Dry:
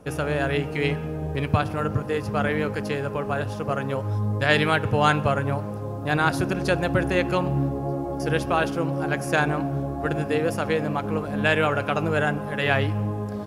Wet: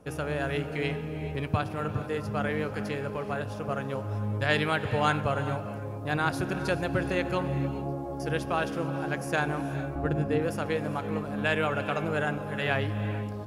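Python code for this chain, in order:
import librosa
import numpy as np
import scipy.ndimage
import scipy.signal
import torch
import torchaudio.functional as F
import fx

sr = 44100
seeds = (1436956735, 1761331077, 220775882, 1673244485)

y = fx.tilt_eq(x, sr, slope=-2.0, at=(9.95, 10.42))
y = fx.rev_gated(y, sr, seeds[0], gate_ms=470, shape='rising', drr_db=11.0)
y = y * 10.0 ** (-6.0 / 20.0)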